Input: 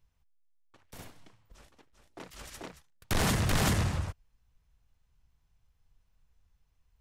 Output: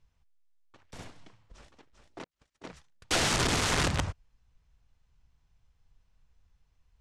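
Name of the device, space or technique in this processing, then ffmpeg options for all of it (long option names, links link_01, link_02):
overflowing digital effects unit: -filter_complex "[0:a]asettb=1/sr,asplit=3[link_01][link_02][link_03];[link_01]atrim=end=2.244[link_04];[link_02]atrim=start=2.24:end=2.69,asetpts=PTS-STARTPTS,afade=type=in:duration=0.004:curve=qsin,afade=type=out:start_time=0.446:duration=0.004:curve=qsin,agate=range=-42dB:threshold=-41dB:ratio=16:detection=peak[link_05];[link_03]atrim=start=2.686[link_06];[link_04][link_05]acrossfade=duration=0.004:curve1=hsin:curve2=qsin[link_07];[link_07][link_06]acrossfade=duration=0.004:curve1=qsin:curve2=hsin,aeval=exprs='(mod(16.8*val(0)+1,2)-1)/16.8':channel_layout=same,lowpass=8600,lowpass=9300,volume=2.5dB"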